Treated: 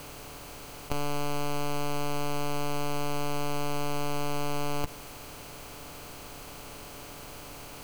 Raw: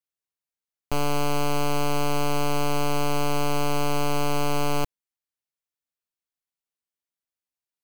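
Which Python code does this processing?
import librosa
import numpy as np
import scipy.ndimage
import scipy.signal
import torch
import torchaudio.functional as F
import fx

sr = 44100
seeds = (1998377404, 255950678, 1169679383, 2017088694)

y = fx.bin_compress(x, sr, power=0.4)
y = fx.over_compress(y, sr, threshold_db=-27.0, ratio=-0.5)
y = F.gain(torch.from_numpy(y), 2.5).numpy()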